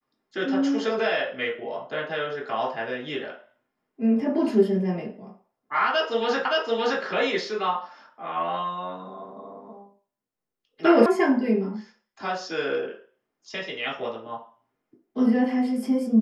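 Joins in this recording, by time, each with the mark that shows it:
6.45 s: repeat of the last 0.57 s
11.06 s: sound stops dead

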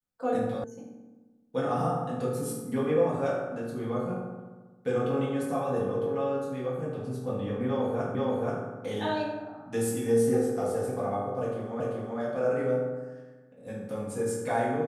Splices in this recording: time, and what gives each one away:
0.64 s: sound stops dead
8.15 s: repeat of the last 0.48 s
11.80 s: repeat of the last 0.39 s

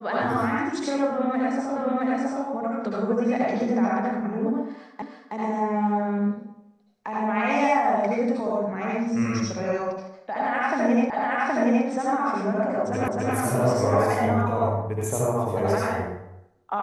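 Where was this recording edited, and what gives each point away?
1.76 s: repeat of the last 0.67 s
5.02 s: repeat of the last 0.32 s
11.10 s: repeat of the last 0.77 s
13.08 s: repeat of the last 0.26 s

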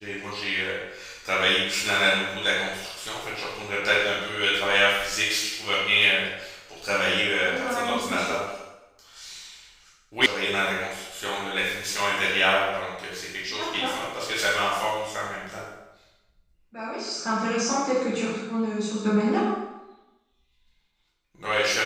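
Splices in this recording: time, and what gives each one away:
10.26 s: sound stops dead

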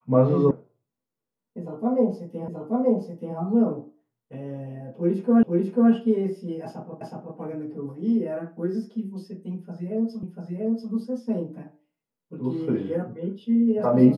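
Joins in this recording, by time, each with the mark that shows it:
0.51 s: sound stops dead
2.48 s: repeat of the last 0.88 s
5.43 s: repeat of the last 0.49 s
7.01 s: repeat of the last 0.37 s
10.23 s: repeat of the last 0.69 s

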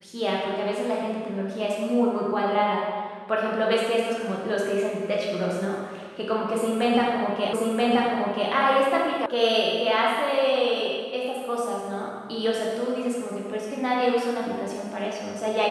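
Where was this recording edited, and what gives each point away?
7.53 s: repeat of the last 0.98 s
9.26 s: sound stops dead

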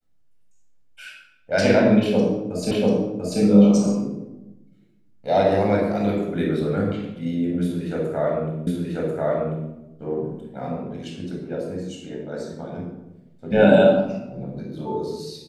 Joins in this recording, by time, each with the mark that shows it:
2.71 s: repeat of the last 0.69 s
8.67 s: repeat of the last 1.04 s

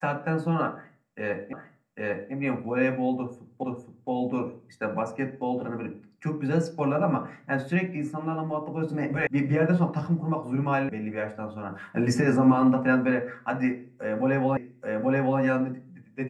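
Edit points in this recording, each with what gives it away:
1.53 s: repeat of the last 0.8 s
3.63 s: repeat of the last 0.47 s
9.27 s: sound stops dead
10.89 s: sound stops dead
14.57 s: repeat of the last 0.83 s

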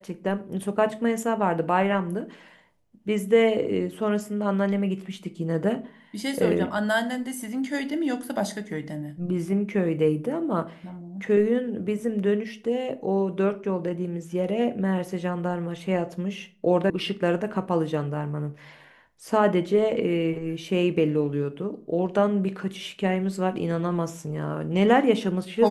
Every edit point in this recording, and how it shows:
16.90 s: sound stops dead

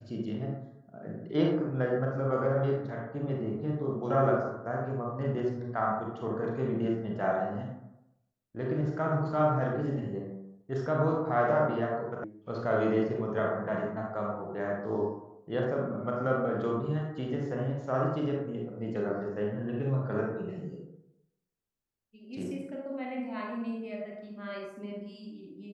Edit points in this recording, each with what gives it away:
12.24 s: sound stops dead

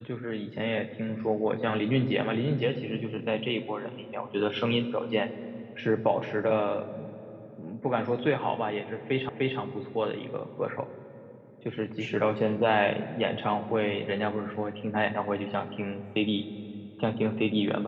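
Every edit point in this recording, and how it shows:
9.29 s: repeat of the last 0.3 s

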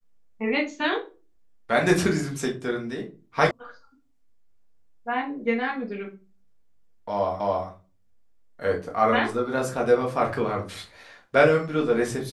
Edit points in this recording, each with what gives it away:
3.51 s: sound stops dead
7.40 s: repeat of the last 0.28 s

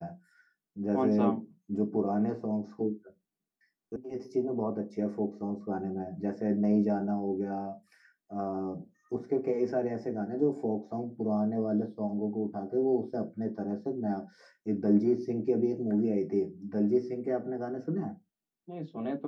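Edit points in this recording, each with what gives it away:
3.96 s: sound stops dead

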